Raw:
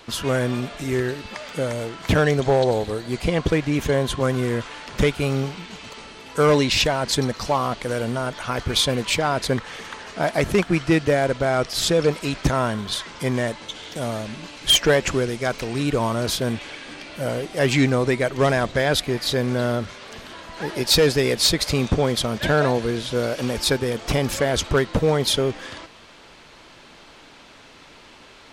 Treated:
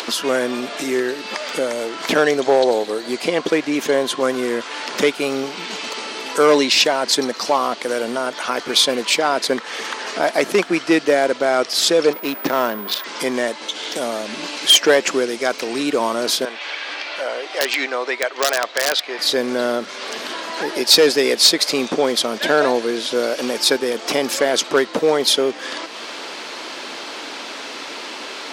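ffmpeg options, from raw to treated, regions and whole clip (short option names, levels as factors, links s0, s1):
-filter_complex "[0:a]asettb=1/sr,asplit=3[s0][s1][s2];[s0]atrim=end=12.134[s3];[s1]atrim=start=12.13:end=13.04,asetpts=PTS-STARTPTS,afade=t=in:d=0.004:c=qsin,afade=t=out:st=0.906:d=0.004:c=qsin,adynamicsmooth=sensitivity=3:basefreq=1100,aeval=exprs='val(0)+0.0158*sin(2*PI*15000*n/s)':c=same[s4];[s2]atrim=start=13.036[s5];[s3][s4]acrossfade=d=0.004:c1=hsin:c2=qsin[s6];[s6][s5]acrossfade=d=0.004:c1=qsin:c2=hsin,asettb=1/sr,asplit=3[s7][s8][s9];[s7]atrim=end=16.454[s10];[s8]atrim=start=16.45:end=19.19,asetpts=PTS-STARTPTS,afade=t=in:d=0.004:c=qsin,afade=t=out:st=2.736:d=0.004:c=qsin,highpass=670,lowpass=4300,aeval=exprs='(mod(4.47*val(0)+1,2)-1)/4.47':c=same[s11];[s9]atrim=start=19.186[s12];[s10][s11]acrossfade=d=0.004:c1=hsin:c2=qsin[s13];[s13][s12]acrossfade=d=0.004:c1=qsin:c2=hsin,highpass=f=260:w=0.5412,highpass=f=260:w=1.3066,equalizer=f=5000:t=o:w=0.65:g=3.5,acompressor=mode=upward:threshold=0.0708:ratio=2.5,volume=1.58"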